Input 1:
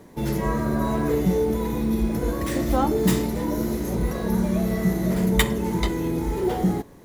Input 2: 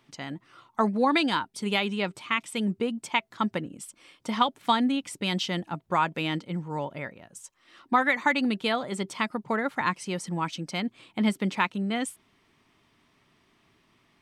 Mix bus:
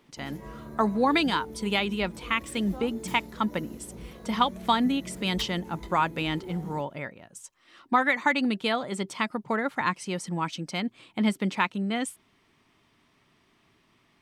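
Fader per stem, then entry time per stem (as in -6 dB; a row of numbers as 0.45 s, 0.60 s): -18.5 dB, 0.0 dB; 0.00 s, 0.00 s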